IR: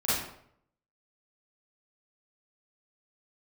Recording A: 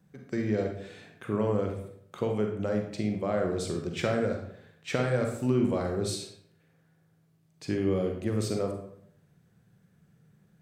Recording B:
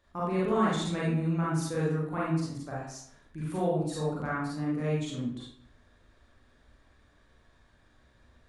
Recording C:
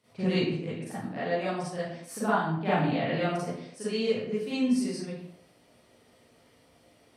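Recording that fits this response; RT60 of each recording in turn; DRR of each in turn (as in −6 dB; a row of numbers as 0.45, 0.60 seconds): C; 0.70, 0.70, 0.70 seconds; 2.5, −7.5, −12.0 decibels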